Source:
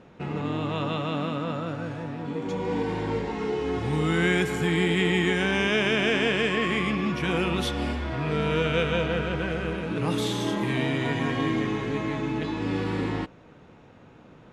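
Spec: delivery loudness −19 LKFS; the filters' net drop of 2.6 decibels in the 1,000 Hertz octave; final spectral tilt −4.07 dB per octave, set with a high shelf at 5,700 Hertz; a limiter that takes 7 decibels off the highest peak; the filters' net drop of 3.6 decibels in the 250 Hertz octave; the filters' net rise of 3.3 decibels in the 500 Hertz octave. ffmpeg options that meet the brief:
ffmpeg -i in.wav -af "equalizer=frequency=250:width_type=o:gain=-8,equalizer=frequency=500:width_type=o:gain=7.5,equalizer=frequency=1000:width_type=o:gain=-5.5,highshelf=frequency=5700:gain=3.5,volume=8.5dB,alimiter=limit=-8dB:level=0:latency=1" out.wav

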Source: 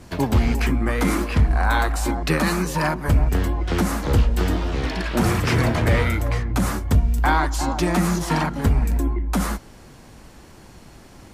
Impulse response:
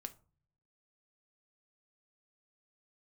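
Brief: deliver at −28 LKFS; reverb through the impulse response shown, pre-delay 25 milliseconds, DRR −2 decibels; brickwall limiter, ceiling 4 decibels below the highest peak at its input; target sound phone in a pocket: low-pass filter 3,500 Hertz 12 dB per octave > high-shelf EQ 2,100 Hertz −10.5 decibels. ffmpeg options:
-filter_complex "[0:a]alimiter=limit=-12.5dB:level=0:latency=1,asplit=2[link_01][link_02];[1:a]atrim=start_sample=2205,adelay=25[link_03];[link_02][link_03]afir=irnorm=-1:irlink=0,volume=6dB[link_04];[link_01][link_04]amix=inputs=2:normalize=0,lowpass=3500,highshelf=frequency=2100:gain=-10.5,volume=-8dB"

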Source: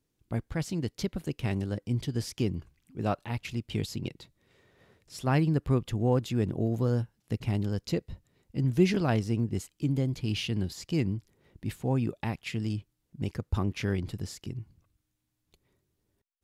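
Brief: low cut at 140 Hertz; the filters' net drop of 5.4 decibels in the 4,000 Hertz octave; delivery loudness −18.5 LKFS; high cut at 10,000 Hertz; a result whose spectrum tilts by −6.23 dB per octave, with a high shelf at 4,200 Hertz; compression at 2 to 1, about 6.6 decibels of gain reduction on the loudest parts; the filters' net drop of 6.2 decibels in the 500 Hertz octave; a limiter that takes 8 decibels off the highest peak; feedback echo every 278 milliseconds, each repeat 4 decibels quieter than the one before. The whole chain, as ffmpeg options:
ffmpeg -i in.wav -af "highpass=140,lowpass=10000,equalizer=frequency=500:width_type=o:gain=-8.5,equalizer=frequency=4000:width_type=o:gain=-4.5,highshelf=frequency=4200:gain=-5,acompressor=threshold=-32dB:ratio=2,alimiter=level_in=4.5dB:limit=-24dB:level=0:latency=1,volume=-4.5dB,aecho=1:1:278|556|834|1112|1390|1668|1946|2224|2502:0.631|0.398|0.25|0.158|0.0994|0.0626|0.0394|0.0249|0.0157,volume=20dB" out.wav

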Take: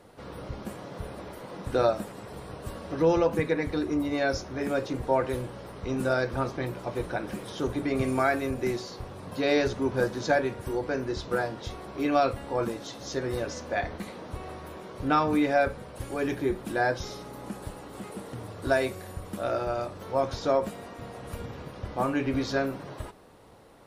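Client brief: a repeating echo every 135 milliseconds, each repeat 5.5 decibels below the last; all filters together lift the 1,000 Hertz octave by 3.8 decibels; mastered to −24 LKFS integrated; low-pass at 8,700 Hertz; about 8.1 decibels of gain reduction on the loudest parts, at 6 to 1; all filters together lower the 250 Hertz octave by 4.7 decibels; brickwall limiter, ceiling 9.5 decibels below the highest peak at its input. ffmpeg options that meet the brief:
ffmpeg -i in.wav -af "lowpass=8700,equalizer=frequency=250:width_type=o:gain=-6.5,equalizer=frequency=1000:width_type=o:gain=6,acompressor=threshold=-25dB:ratio=6,alimiter=limit=-23.5dB:level=0:latency=1,aecho=1:1:135|270|405|540|675|810|945:0.531|0.281|0.149|0.079|0.0419|0.0222|0.0118,volume=10dB" out.wav

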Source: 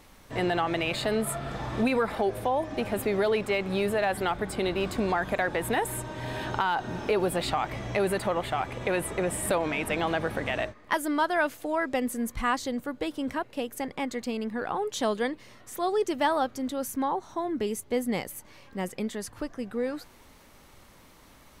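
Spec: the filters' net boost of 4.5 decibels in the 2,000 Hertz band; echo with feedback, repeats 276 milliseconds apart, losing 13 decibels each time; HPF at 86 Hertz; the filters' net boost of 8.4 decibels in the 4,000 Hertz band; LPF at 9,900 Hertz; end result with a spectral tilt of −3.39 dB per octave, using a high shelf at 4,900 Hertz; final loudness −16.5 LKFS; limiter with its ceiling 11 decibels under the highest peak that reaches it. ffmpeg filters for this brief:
ffmpeg -i in.wav -af "highpass=86,lowpass=9900,equalizer=frequency=2000:width_type=o:gain=3,equalizer=frequency=4000:width_type=o:gain=7.5,highshelf=frequency=4900:gain=5,alimiter=limit=-18dB:level=0:latency=1,aecho=1:1:276|552|828:0.224|0.0493|0.0108,volume=13dB" out.wav

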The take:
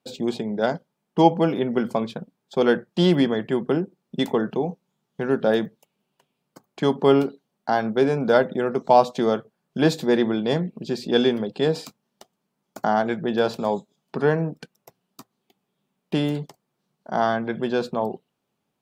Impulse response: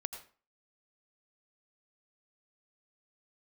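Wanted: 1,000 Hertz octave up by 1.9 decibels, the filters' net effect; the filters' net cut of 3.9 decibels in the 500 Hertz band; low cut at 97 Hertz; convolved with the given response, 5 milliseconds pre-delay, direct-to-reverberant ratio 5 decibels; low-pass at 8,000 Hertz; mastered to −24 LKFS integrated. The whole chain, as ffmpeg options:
-filter_complex "[0:a]highpass=97,lowpass=8000,equalizer=frequency=500:width_type=o:gain=-6.5,equalizer=frequency=1000:width_type=o:gain=5.5,asplit=2[link_01][link_02];[1:a]atrim=start_sample=2205,adelay=5[link_03];[link_02][link_03]afir=irnorm=-1:irlink=0,volume=-4.5dB[link_04];[link_01][link_04]amix=inputs=2:normalize=0,volume=-1dB"

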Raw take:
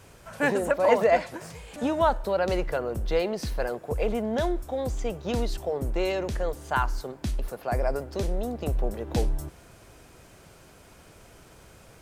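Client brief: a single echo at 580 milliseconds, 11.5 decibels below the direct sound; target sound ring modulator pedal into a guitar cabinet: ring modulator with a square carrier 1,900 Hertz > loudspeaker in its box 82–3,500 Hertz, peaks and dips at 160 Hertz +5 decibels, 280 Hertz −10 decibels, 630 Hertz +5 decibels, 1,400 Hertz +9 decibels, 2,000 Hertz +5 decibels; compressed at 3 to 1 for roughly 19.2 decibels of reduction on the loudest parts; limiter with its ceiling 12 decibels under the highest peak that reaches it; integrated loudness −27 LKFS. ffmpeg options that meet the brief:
ffmpeg -i in.wav -af "acompressor=threshold=-44dB:ratio=3,alimiter=level_in=15dB:limit=-24dB:level=0:latency=1,volume=-15dB,aecho=1:1:580:0.266,aeval=exprs='val(0)*sgn(sin(2*PI*1900*n/s))':channel_layout=same,highpass=82,equalizer=frequency=160:width_type=q:width=4:gain=5,equalizer=frequency=280:width_type=q:width=4:gain=-10,equalizer=frequency=630:width_type=q:width=4:gain=5,equalizer=frequency=1400:width_type=q:width=4:gain=9,equalizer=frequency=2000:width_type=q:width=4:gain=5,lowpass=frequency=3500:width=0.5412,lowpass=frequency=3500:width=1.3066,volume=13.5dB" out.wav

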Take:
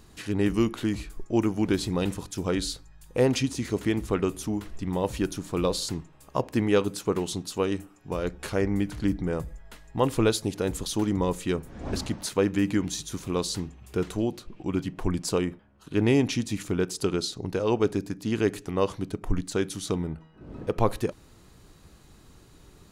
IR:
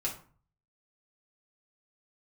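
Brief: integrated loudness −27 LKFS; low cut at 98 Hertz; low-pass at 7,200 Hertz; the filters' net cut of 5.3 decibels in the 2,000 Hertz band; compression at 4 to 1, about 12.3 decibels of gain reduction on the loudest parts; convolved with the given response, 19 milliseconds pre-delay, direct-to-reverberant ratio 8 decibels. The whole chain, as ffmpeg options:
-filter_complex "[0:a]highpass=98,lowpass=7200,equalizer=frequency=2000:width_type=o:gain=-7,acompressor=threshold=-33dB:ratio=4,asplit=2[link_01][link_02];[1:a]atrim=start_sample=2205,adelay=19[link_03];[link_02][link_03]afir=irnorm=-1:irlink=0,volume=-11.5dB[link_04];[link_01][link_04]amix=inputs=2:normalize=0,volume=10dB"

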